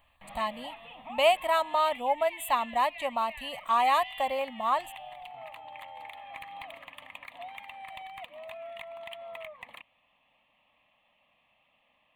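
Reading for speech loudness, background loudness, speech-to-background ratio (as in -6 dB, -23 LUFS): -28.0 LUFS, -44.0 LUFS, 16.0 dB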